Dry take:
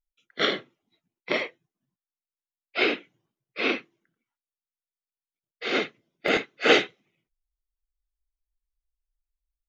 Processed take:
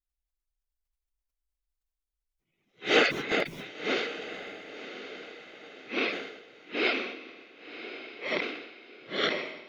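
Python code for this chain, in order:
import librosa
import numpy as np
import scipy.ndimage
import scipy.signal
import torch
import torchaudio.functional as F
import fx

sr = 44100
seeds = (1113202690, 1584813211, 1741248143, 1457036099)

y = np.flip(x).copy()
y = fx.echo_diffused(y, sr, ms=1072, feedback_pct=43, wet_db=-10.5)
y = fx.sustainer(y, sr, db_per_s=61.0)
y = F.gain(torch.from_numpy(y), -4.5).numpy()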